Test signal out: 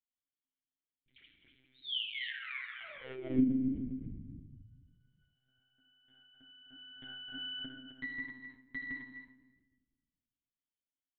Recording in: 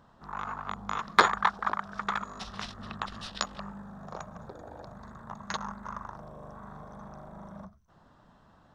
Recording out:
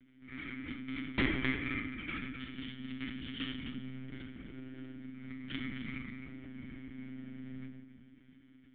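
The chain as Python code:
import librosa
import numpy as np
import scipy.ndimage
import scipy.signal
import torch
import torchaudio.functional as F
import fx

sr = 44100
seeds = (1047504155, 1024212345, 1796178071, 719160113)

p1 = fx.lower_of_two(x, sr, delay_ms=0.63)
p2 = fx.peak_eq(p1, sr, hz=670.0, db=10.0, octaves=0.26)
p3 = fx.rider(p2, sr, range_db=5, speed_s=2.0)
p4 = p2 + F.gain(torch.from_numpy(p3), 0.5).numpy()
p5 = fx.vowel_filter(p4, sr, vowel='i')
p6 = 10.0 ** (-21.5 / 20.0) * (np.abs((p5 / 10.0 ** (-21.5 / 20.0) + 3.0) % 4.0 - 2.0) - 1.0)
p7 = p6 + fx.echo_single(p6, sr, ms=259, db=-9.0, dry=0)
p8 = fx.room_shoebox(p7, sr, seeds[0], volume_m3=560.0, walls='mixed', distance_m=1.5)
p9 = fx.lpc_monotone(p8, sr, seeds[1], pitch_hz=130.0, order=16)
y = F.gain(torch.from_numpy(p9), -1.0).numpy()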